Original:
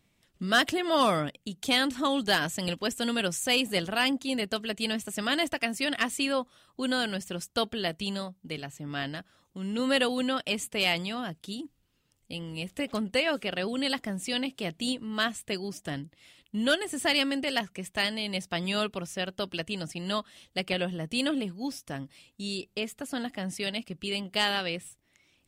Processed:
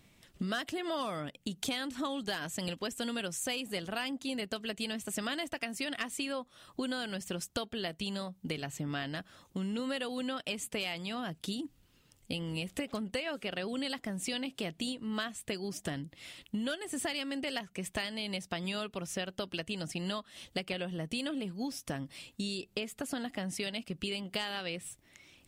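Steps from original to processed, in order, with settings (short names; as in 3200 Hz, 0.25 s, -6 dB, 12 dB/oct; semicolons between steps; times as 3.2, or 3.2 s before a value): compressor 10:1, threshold -40 dBFS, peak gain reduction 21 dB; gain +7 dB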